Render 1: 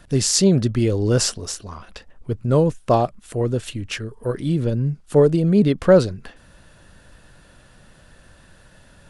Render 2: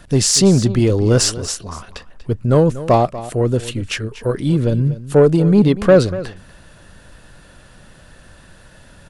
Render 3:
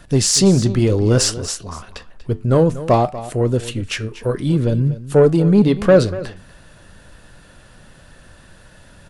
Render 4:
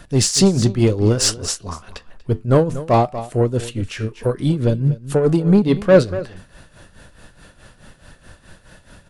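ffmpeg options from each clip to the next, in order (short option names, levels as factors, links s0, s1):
-af "acontrast=54,aecho=1:1:240:0.168,volume=0.891"
-af "flanger=delay=7.2:depth=3.2:regen=-81:speed=0.62:shape=sinusoidal,volume=1.5"
-filter_complex "[0:a]tremolo=f=4.7:d=0.74,asplit=2[s0][s1];[s1]asoftclip=type=tanh:threshold=0.251,volume=0.668[s2];[s0][s2]amix=inputs=2:normalize=0,volume=0.841"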